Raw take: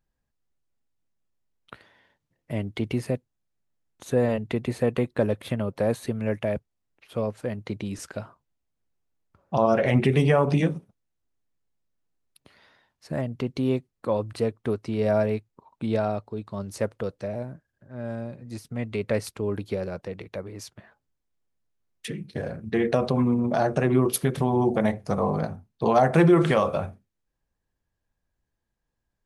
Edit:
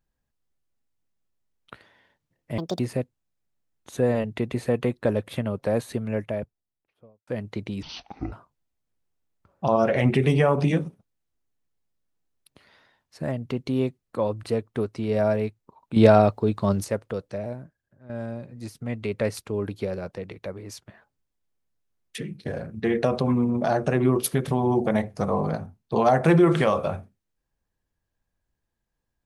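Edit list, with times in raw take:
0:02.58–0:02.93: play speed 164%
0:06.05–0:07.41: fade out and dull
0:07.96–0:08.22: play speed 52%
0:15.86–0:16.74: clip gain +10.5 dB
0:17.33–0:17.99: fade out, to −10.5 dB

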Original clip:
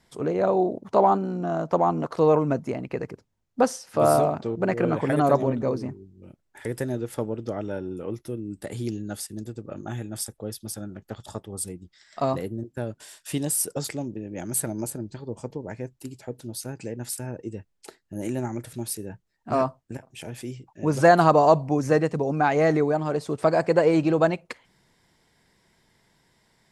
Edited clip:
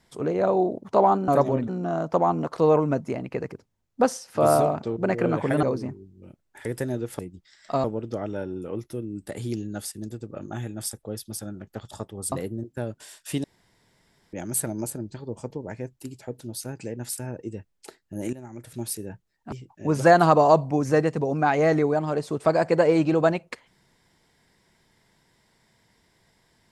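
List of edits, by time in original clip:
0:05.22–0:05.63: move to 0:01.28
0:11.67–0:12.32: move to 0:07.19
0:13.44–0:14.33: fill with room tone
0:18.33–0:18.80: fade in quadratic, from −14 dB
0:19.52–0:20.50: remove

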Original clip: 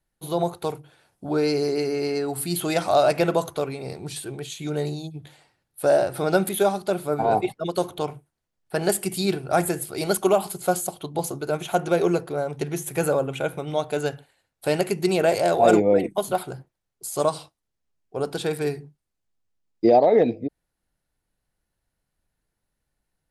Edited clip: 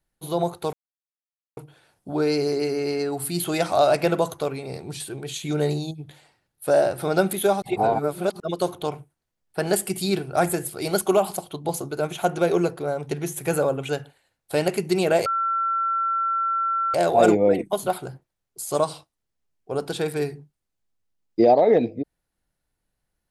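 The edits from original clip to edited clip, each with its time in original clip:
0:00.73: splice in silence 0.84 s
0:04.44–0:05.07: clip gain +3.5 dB
0:06.78–0:07.56: reverse
0:10.52–0:10.86: remove
0:13.39–0:14.02: remove
0:15.39: insert tone 1,350 Hz −20.5 dBFS 1.68 s

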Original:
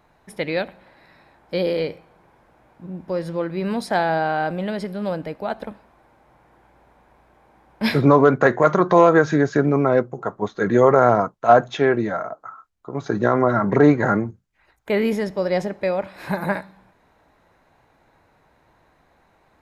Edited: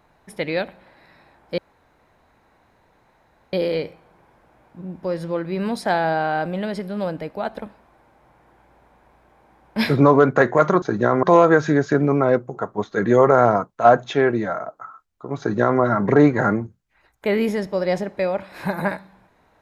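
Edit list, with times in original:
0:01.58: splice in room tone 1.95 s
0:13.03–0:13.44: duplicate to 0:08.87

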